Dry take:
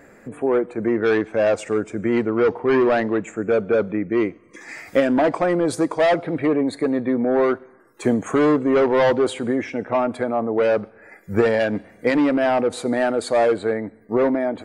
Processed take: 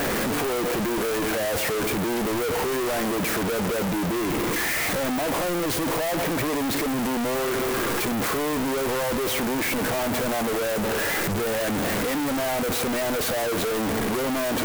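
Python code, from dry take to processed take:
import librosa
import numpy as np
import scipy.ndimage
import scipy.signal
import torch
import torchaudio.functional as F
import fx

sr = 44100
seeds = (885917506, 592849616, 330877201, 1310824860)

y = np.sign(x) * np.sqrt(np.mean(np.square(x)))
y = fx.clock_jitter(y, sr, seeds[0], jitter_ms=0.045)
y = y * 10.0 ** (-4.5 / 20.0)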